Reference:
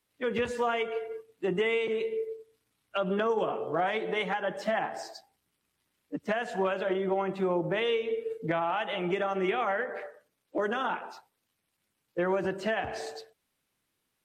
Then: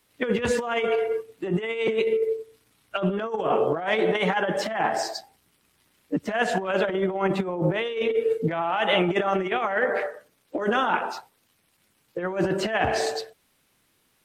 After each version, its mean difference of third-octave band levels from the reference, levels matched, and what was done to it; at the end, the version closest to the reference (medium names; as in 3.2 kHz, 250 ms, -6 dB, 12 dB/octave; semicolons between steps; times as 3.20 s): 4.5 dB: compressor with a negative ratio -32 dBFS, ratio -0.5; trim +9 dB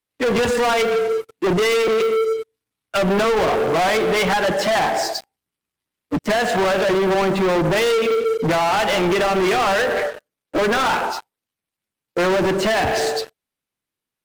9.0 dB: waveshaping leveller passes 5; trim +3 dB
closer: first